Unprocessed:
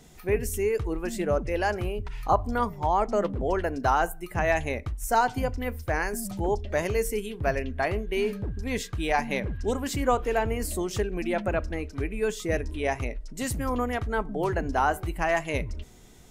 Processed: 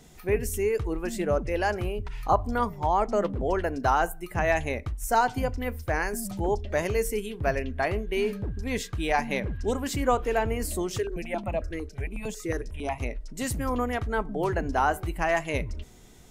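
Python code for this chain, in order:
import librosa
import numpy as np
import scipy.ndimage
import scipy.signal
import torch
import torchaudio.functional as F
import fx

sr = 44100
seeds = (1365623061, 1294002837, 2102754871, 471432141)

y = fx.phaser_held(x, sr, hz=11.0, low_hz=210.0, high_hz=1600.0, at=(10.98, 13.01))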